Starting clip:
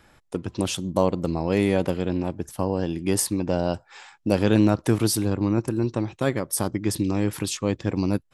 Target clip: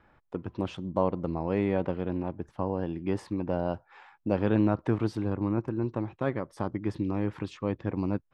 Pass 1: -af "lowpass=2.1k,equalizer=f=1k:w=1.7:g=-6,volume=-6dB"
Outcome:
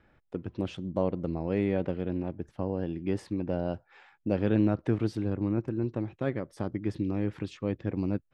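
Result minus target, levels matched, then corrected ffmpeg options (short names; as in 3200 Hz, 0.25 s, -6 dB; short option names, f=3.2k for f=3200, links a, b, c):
1000 Hz band -5.5 dB
-af "lowpass=2.1k,equalizer=f=1k:w=1.7:g=3,volume=-6dB"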